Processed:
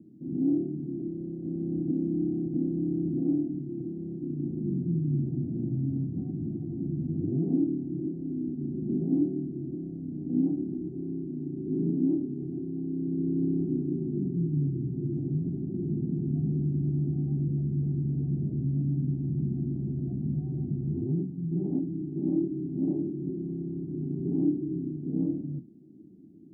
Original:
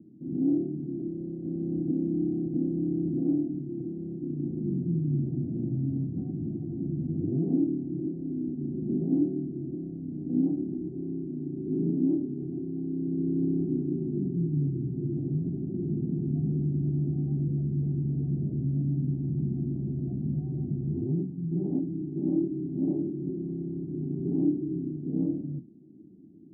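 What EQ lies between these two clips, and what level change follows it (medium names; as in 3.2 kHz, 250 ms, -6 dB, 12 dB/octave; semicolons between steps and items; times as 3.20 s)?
dynamic bell 560 Hz, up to -3 dB, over -44 dBFS, Q 1.8; 0.0 dB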